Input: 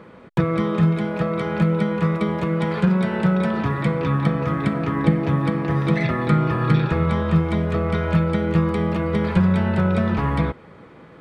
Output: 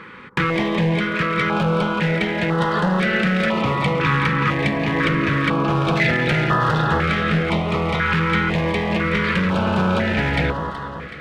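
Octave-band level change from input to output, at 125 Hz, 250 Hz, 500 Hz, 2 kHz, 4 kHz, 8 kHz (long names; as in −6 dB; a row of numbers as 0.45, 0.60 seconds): −1.5 dB, −1.0 dB, +1.5 dB, +10.0 dB, +11.0 dB, can't be measured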